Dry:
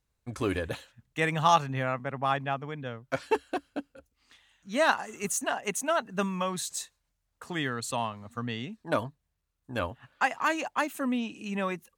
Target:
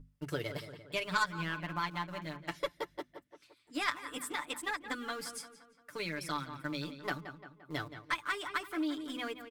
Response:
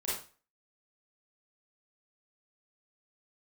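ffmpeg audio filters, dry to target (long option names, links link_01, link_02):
-filter_complex "[0:a]asplit=2[link_01][link_02];[link_02]aeval=exprs='val(0)*gte(abs(val(0)),0.0188)':channel_layout=same,volume=-8dB[link_03];[link_01][link_03]amix=inputs=2:normalize=0,acrossover=split=6300[link_04][link_05];[link_05]acompressor=threshold=-45dB:ratio=4:attack=1:release=60[link_06];[link_04][link_06]amix=inputs=2:normalize=0,asetrate=55566,aresample=44100,asplit=2[link_07][link_08];[link_08]adelay=173,lowpass=frequency=3500:poles=1,volume=-12dB,asplit=2[link_09][link_10];[link_10]adelay=173,lowpass=frequency=3500:poles=1,volume=0.5,asplit=2[link_11][link_12];[link_12]adelay=173,lowpass=frequency=3500:poles=1,volume=0.5,asplit=2[link_13][link_14];[link_14]adelay=173,lowpass=frequency=3500:poles=1,volume=0.5,asplit=2[link_15][link_16];[link_16]adelay=173,lowpass=frequency=3500:poles=1,volume=0.5[link_17];[link_07][link_09][link_11][link_13][link_15][link_17]amix=inputs=6:normalize=0,aeval=exprs='val(0)+0.00891*(sin(2*PI*50*n/s)+sin(2*PI*2*50*n/s)/2+sin(2*PI*3*50*n/s)/3+sin(2*PI*4*50*n/s)/4+sin(2*PI*5*50*n/s)/5)':channel_layout=same,aeval=exprs='0.422*(cos(1*acos(clip(val(0)/0.422,-1,1)))-cos(1*PI/2))+0.075*(cos(3*acos(clip(val(0)/0.422,-1,1)))-cos(3*PI/2))':channel_layout=same,equalizer=frequency=760:width=4.7:gain=-10,acompressor=threshold=-35dB:ratio=2,bandreject=frequency=50:width_type=h:width=6,bandreject=frequency=100:width_type=h:width=6,bandreject=frequency=150:width_type=h:width=6,bandreject=frequency=200:width_type=h:width=6,bandreject=frequency=250:width_type=h:width=6,aecho=1:1:6.8:0.75,volume=-1.5dB"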